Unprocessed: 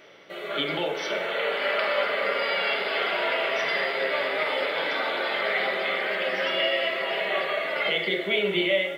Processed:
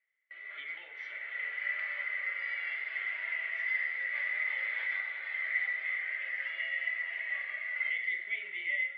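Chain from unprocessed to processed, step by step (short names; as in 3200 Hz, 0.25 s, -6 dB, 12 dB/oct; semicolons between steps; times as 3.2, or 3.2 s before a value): band-pass 2000 Hz, Q 13; gate with hold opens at -43 dBFS; 4.15–5.01 fast leveller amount 50%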